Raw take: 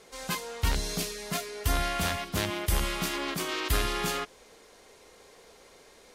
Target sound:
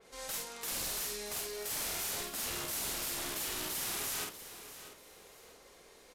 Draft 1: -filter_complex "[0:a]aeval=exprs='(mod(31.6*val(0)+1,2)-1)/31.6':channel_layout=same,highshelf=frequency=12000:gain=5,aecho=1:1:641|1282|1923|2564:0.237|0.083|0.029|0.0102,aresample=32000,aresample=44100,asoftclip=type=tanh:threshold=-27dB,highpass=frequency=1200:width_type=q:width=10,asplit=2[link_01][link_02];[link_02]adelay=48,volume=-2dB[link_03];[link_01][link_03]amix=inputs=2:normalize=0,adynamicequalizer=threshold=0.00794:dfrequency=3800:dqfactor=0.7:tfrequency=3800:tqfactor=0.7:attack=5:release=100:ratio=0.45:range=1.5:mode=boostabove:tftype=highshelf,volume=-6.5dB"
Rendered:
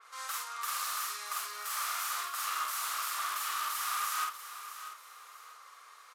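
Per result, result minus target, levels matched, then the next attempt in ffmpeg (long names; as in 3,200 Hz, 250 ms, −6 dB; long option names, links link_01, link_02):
soft clipping: distortion +17 dB; 1,000 Hz band +10.5 dB
-filter_complex "[0:a]aeval=exprs='(mod(31.6*val(0)+1,2)-1)/31.6':channel_layout=same,highshelf=frequency=12000:gain=5,aecho=1:1:641|1282|1923|2564:0.237|0.083|0.029|0.0102,aresample=32000,aresample=44100,asoftclip=type=tanh:threshold=-17.5dB,highpass=frequency=1200:width_type=q:width=10,asplit=2[link_01][link_02];[link_02]adelay=48,volume=-2dB[link_03];[link_01][link_03]amix=inputs=2:normalize=0,adynamicequalizer=threshold=0.00794:dfrequency=3800:dqfactor=0.7:tfrequency=3800:tqfactor=0.7:attack=5:release=100:ratio=0.45:range=1.5:mode=boostabove:tftype=highshelf,volume=-6.5dB"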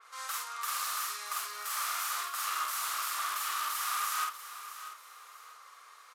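1,000 Hz band +10.5 dB
-filter_complex "[0:a]aeval=exprs='(mod(31.6*val(0)+1,2)-1)/31.6':channel_layout=same,highshelf=frequency=12000:gain=5,aecho=1:1:641|1282|1923|2564:0.237|0.083|0.029|0.0102,aresample=32000,aresample=44100,asoftclip=type=tanh:threshold=-17.5dB,asplit=2[link_01][link_02];[link_02]adelay=48,volume=-2dB[link_03];[link_01][link_03]amix=inputs=2:normalize=0,adynamicequalizer=threshold=0.00794:dfrequency=3800:dqfactor=0.7:tfrequency=3800:tqfactor=0.7:attack=5:release=100:ratio=0.45:range=1.5:mode=boostabove:tftype=highshelf,volume=-6.5dB"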